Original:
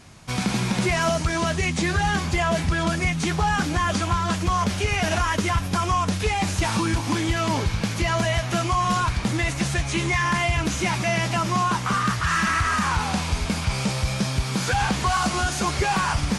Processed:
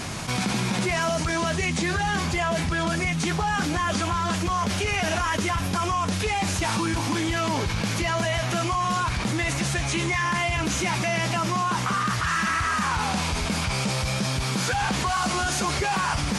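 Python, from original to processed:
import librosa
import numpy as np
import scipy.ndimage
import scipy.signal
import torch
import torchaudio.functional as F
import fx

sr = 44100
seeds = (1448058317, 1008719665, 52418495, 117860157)

y = fx.low_shelf(x, sr, hz=94.0, db=-7.0)
y = fx.env_flatten(y, sr, amount_pct=70)
y = y * librosa.db_to_amplitude(-3.5)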